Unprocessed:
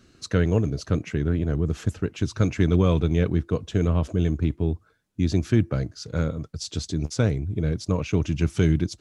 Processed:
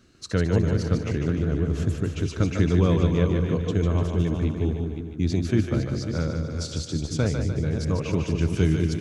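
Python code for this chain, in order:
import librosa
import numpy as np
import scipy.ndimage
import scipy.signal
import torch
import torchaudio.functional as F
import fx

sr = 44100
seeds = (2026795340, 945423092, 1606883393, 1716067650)

y = fx.reverse_delay(x, sr, ms=278, wet_db=-8)
y = fx.echo_split(y, sr, split_hz=400.0, low_ms=194, high_ms=149, feedback_pct=52, wet_db=-5.5)
y = y * 10.0 ** (-2.0 / 20.0)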